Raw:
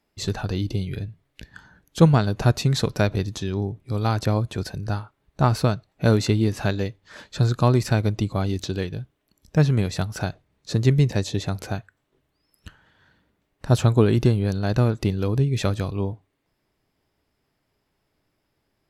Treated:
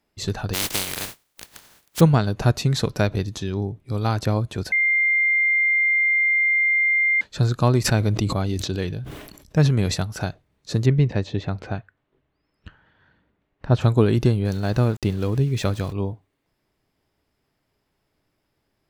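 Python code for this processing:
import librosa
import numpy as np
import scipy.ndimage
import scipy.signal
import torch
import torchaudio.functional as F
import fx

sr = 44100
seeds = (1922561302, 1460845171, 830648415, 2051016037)

y = fx.spec_flatten(x, sr, power=0.17, at=(0.53, 1.99), fade=0.02)
y = fx.sustainer(y, sr, db_per_s=47.0, at=(7.84, 9.94), fade=0.02)
y = fx.lowpass(y, sr, hz=3000.0, slope=12, at=(10.85, 13.8), fade=0.02)
y = fx.sample_gate(y, sr, floor_db=-38.5, at=(14.45, 15.93))
y = fx.edit(y, sr, fx.bleep(start_s=4.72, length_s=2.49, hz=2100.0, db=-16.0), tone=tone)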